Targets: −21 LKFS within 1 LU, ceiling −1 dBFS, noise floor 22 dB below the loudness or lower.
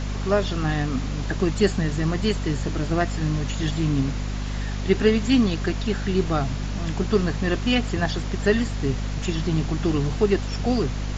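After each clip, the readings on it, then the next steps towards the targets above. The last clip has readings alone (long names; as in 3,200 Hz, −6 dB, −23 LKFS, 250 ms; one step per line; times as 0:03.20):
mains hum 50 Hz; hum harmonics up to 250 Hz; level of the hum −25 dBFS; background noise floor −28 dBFS; target noise floor −46 dBFS; integrated loudness −24.0 LKFS; sample peak −5.5 dBFS; target loudness −21.0 LKFS
→ mains-hum notches 50/100/150/200/250 Hz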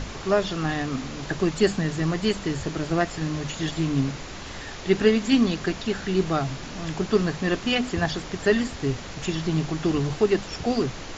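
mains hum none found; background noise floor −37 dBFS; target noise floor −47 dBFS
→ noise reduction from a noise print 10 dB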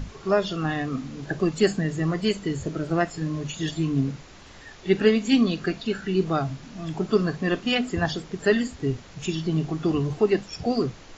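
background noise floor −46 dBFS; target noise floor −48 dBFS
→ noise reduction from a noise print 6 dB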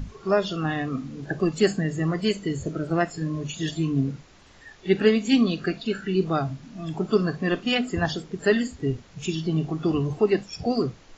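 background noise floor −52 dBFS; integrated loudness −25.5 LKFS; sample peak −6.5 dBFS; target loudness −21.0 LKFS
→ level +4.5 dB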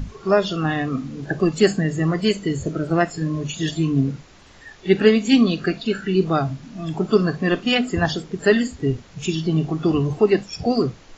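integrated loudness −21.0 LKFS; sample peak −2.0 dBFS; background noise floor −47 dBFS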